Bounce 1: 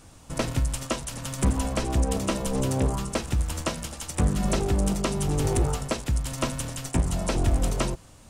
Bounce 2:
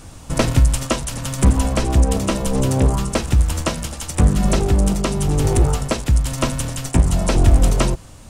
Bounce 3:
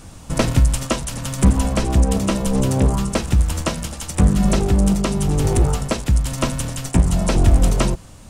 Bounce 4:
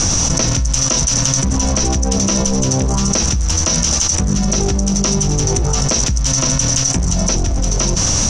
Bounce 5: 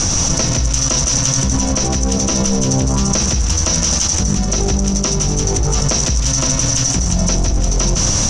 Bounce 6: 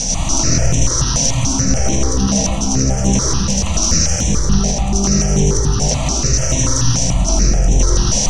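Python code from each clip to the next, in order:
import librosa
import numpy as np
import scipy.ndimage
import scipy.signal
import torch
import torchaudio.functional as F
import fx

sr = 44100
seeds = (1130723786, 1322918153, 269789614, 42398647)

y1 = fx.low_shelf(x, sr, hz=130.0, db=4.5)
y1 = fx.rider(y1, sr, range_db=4, speed_s=2.0)
y1 = y1 * librosa.db_to_amplitude(6.0)
y2 = fx.peak_eq(y1, sr, hz=190.0, db=5.5, octaves=0.25)
y2 = y2 * librosa.db_to_amplitude(-1.0)
y3 = fx.lowpass_res(y2, sr, hz=5900.0, q=15.0)
y3 = fx.env_flatten(y3, sr, amount_pct=100)
y3 = y3 * librosa.db_to_amplitude(-7.0)
y4 = y3 + 10.0 ** (-6.5 / 20.0) * np.pad(y3, (int(159 * sr / 1000.0), 0))[:len(y3)]
y4 = y4 * librosa.db_to_amplitude(-1.0)
y5 = fx.rev_freeverb(y4, sr, rt60_s=1.8, hf_ratio=0.6, predelay_ms=40, drr_db=-4.0)
y5 = fx.phaser_held(y5, sr, hz=6.9, low_hz=340.0, high_hz=4700.0)
y5 = y5 * librosa.db_to_amplitude(-2.0)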